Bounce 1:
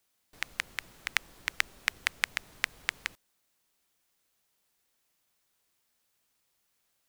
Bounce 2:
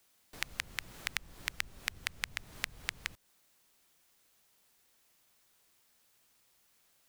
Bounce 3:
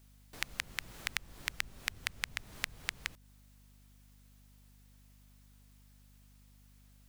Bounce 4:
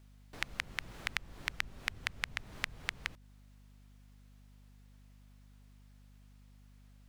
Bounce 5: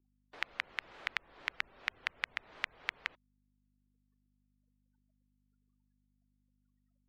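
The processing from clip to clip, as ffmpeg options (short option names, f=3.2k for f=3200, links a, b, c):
-filter_complex "[0:a]acrossover=split=170[a][b];[b]acompressor=threshold=-39dB:ratio=5[c];[a][c]amix=inputs=2:normalize=0,volume=6dB"
-af "aeval=exprs='val(0)+0.001*(sin(2*PI*50*n/s)+sin(2*PI*2*50*n/s)/2+sin(2*PI*3*50*n/s)/3+sin(2*PI*4*50*n/s)/4+sin(2*PI*5*50*n/s)/5)':c=same"
-af "lowpass=f=3k:p=1,volume=2.5dB"
-filter_complex "[0:a]afftfilt=real='re*gte(hypot(re,im),0.000708)':imag='im*gte(hypot(re,im),0.000708)':win_size=1024:overlap=0.75,acrossover=split=360 4300:gain=0.1 1 0.158[a][b][c];[a][b][c]amix=inputs=3:normalize=0,volume=1dB"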